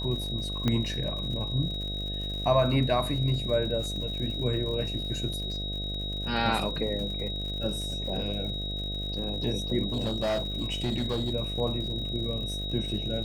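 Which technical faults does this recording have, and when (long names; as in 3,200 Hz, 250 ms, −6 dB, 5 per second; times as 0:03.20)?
mains buzz 50 Hz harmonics 14 −35 dBFS
surface crackle 100 per second −37 dBFS
whistle 3,800 Hz −34 dBFS
0:00.68: click −14 dBFS
0:05.33: drop-out 4.4 ms
0:09.92–0:11.32: clipping −24 dBFS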